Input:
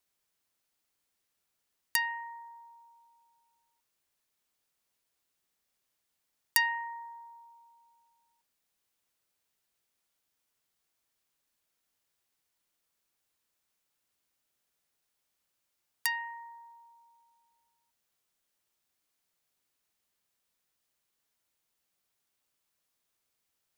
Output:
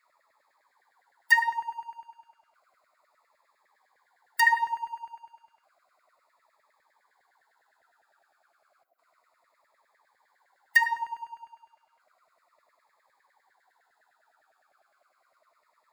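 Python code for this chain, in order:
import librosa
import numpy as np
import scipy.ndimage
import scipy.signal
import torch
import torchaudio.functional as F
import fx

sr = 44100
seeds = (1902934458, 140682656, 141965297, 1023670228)

p1 = fx.wiener(x, sr, points=15)
p2 = fx.spec_box(p1, sr, start_s=13.18, length_s=0.23, low_hz=810.0, high_hz=11000.0, gain_db=-20)
p3 = fx.power_curve(p2, sr, exponent=0.7)
p4 = fx.filter_lfo_highpass(p3, sr, shape='saw_down', hz=6.6, low_hz=590.0, high_hz=2000.0, q=7.8)
p5 = fx.stretch_vocoder(p4, sr, factor=0.67)
p6 = p5 + fx.echo_single(p5, sr, ms=76, db=-21.0, dry=0)
p7 = fx.notch_cascade(p6, sr, direction='falling', hz=0.32)
y = p7 * librosa.db_to_amplitude(-3.5)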